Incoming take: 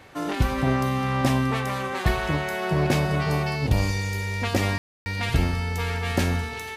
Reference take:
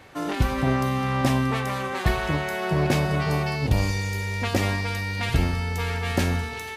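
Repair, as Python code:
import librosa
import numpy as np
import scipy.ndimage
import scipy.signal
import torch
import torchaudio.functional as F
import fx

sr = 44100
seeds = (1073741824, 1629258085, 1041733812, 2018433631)

y = fx.fix_ambience(x, sr, seeds[0], print_start_s=0.0, print_end_s=0.5, start_s=4.78, end_s=5.06)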